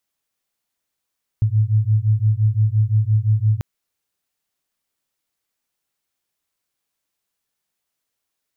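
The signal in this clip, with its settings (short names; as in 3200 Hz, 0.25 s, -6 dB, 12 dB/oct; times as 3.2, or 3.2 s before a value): beating tones 105 Hz, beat 5.8 Hz, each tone -17 dBFS 2.19 s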